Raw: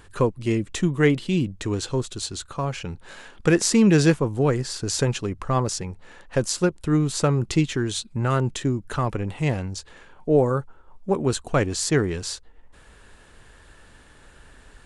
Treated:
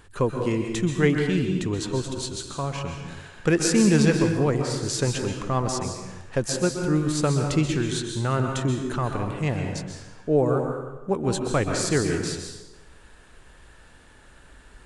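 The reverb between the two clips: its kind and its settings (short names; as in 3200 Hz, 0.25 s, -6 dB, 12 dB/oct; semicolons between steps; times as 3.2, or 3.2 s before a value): plate-style reverb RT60 1.1 s, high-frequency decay 0.75×, pre-delay 0.115 s, DRR 3 dB; gain -2.5 dB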